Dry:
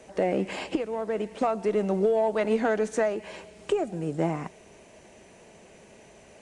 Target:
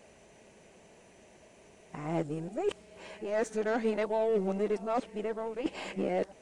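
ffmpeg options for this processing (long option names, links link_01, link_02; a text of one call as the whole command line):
ffmpeg -i in.wav -af "areverse,aeval=exprs='0.224*(cos(1*acos(clip(val(0)/0.224,-1,1)))-cos(1*PI/2))+0.00708*(cos(6*acos(clip(val(0)/0.224,-1,1)))-cos(6*PI/2))+0.01*(cos(8*acos(clip(val(0)/0.224,-1,1)))-cos(8*PI/2))':channel_layout=same,volume=-5.5dB" out.wav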